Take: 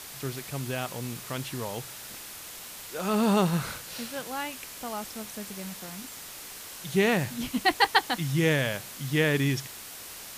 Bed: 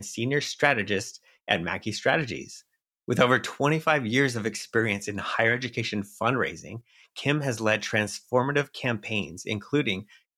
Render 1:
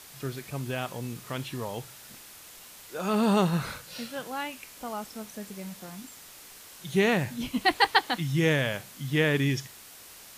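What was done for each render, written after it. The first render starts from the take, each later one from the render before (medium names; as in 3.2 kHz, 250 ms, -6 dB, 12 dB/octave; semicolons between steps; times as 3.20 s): noise print and reduce 6 dB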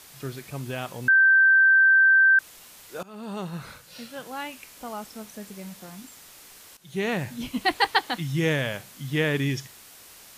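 1.08–2.39 s: bleep 1.56 kHz -13.5 dBFS; 3.03–4.47 s: fade in, from -22 dB; 6.77–7.49 s: fade in equal-power, from -15 dB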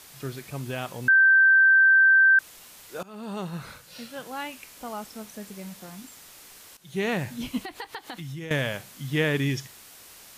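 7.59–8.51 s: compression 12:1, threshold -33 dBFS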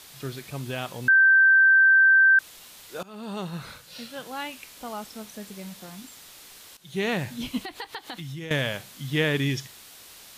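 peaking EQ 3.7 kHz +4.5 dB 0.74 oct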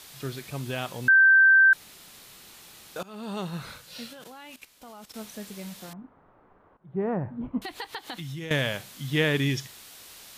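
1.73–2.96 s: room tone; 4.13–5.14 s: level held to a coarse grid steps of 15 dB; 5.93–7.62 s: low-pass 1.2 kHz 24 dB/octave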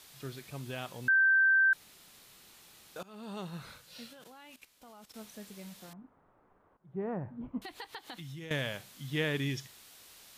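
trim -8 dB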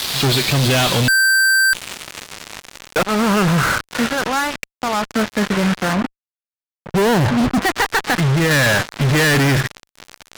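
low-pass sweep 4.3 kHz -> 1.6 kHz, 0.73–3.53 s; fuzz box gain 57 dB, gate -52 dBFS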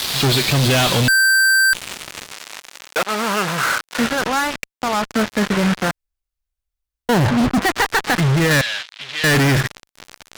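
2.32–3.98 s: high-pass 620 Hz 6 dB/octave; 5.91–7.09 s: room tone; 8.61–9.24 s: band-pass filter 3.3 kHz, Q 1.9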